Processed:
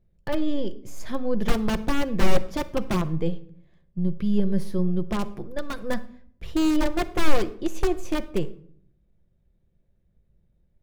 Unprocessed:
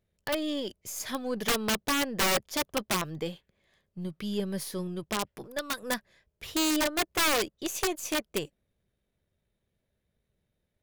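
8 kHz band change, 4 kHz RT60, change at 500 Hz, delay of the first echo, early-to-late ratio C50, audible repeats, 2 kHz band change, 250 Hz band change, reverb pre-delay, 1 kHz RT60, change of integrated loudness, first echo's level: −9.5 dB, 0.45 s, +4.5 dB, no echo audible, 16.5 dB, no echo audible, −3.0 dB, +7.5 dB, 3 ms, 0.50 s, +2.5 dB, no echo audible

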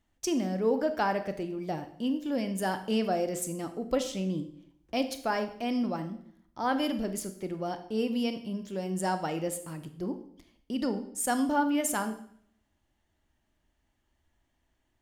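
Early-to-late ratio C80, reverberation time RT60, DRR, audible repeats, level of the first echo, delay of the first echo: 14.5 dB, 0.65 s, 8.5 dB, no echo audible, no echo audible, no echo audible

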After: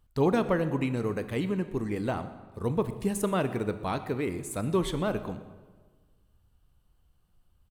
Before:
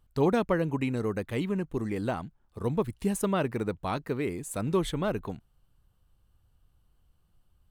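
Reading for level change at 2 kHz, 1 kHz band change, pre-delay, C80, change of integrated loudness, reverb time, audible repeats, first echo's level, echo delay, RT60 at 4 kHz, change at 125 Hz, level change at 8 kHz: +0.5 dB, +0.5 dB, 18 ms, 13.0 dB, +0.5 dB, 1.4 s, 1, −20.0 dB, 123 ms, 1.0 s, +0.5 dB, 0.0 dB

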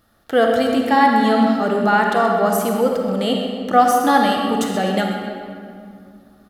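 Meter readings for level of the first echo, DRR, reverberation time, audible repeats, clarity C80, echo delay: −11.5 dB, 0.5 dB, 2.3 s, 1, 2.5 dB, 128 ms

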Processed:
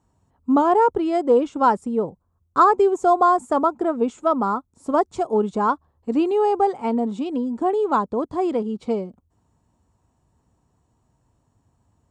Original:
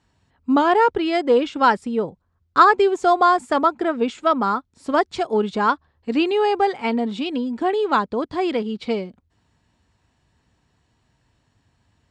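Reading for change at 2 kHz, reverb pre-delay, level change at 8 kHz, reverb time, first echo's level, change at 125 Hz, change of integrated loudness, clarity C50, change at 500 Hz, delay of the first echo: −10.0 dB, no reverb audible, can't be measured, no reverb audible, no echo audible, can't be measured, −1.0 dB, no reverb audible, 0.0 dB, no echo audible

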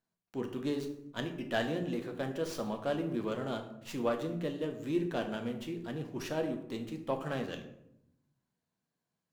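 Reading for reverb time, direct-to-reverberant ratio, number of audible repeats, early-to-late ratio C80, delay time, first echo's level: 0.80 s, 4.0 dB, no echo audible, 11.5 dB, no echo audible, no echo audible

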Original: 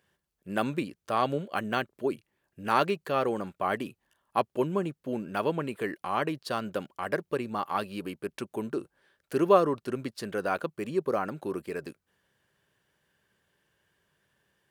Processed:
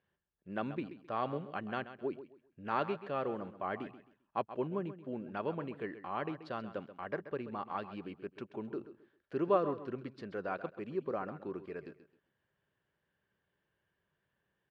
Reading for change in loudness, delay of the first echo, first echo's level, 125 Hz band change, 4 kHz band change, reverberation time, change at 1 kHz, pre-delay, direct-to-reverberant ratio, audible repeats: −8.5 dB, 132 ms, −13.0 dB, −7.5 dB, −13.5 dB, no reverb audible, −8.5 dB, no reverb audible, no reverb audible, 2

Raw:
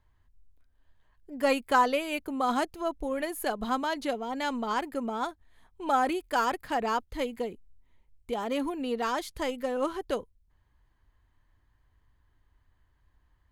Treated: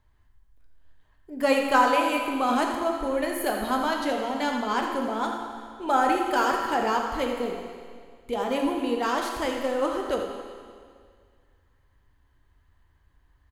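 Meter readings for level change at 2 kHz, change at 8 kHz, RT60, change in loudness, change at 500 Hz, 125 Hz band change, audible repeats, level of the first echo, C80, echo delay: +5.0 dB, +4.5 dB, 2.0 s, +4.5 dB, +4.5 dB, can't be measured, 1, −9.5 dB, 3.5 dB, 84 ms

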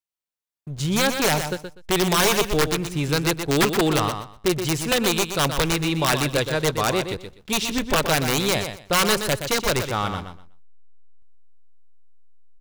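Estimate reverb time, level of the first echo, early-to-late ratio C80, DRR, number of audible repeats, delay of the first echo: no reverb audible, −8.0 dB, no reverb audible, no reverb audible, 2, 123 ms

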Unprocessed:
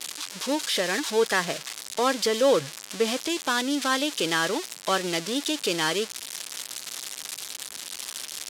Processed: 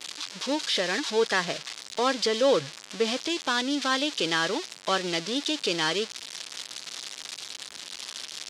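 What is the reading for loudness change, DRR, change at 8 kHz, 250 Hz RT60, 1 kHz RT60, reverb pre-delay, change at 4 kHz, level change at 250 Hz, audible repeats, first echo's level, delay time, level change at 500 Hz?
−1.0 dB, no reverb audible, −5.0 dB, no reverb audible, no reverb audible, no reverb audible, +0.5 dB, −1.5 dB, no echo audible, no echo audible, no echo audible, −1.5 dB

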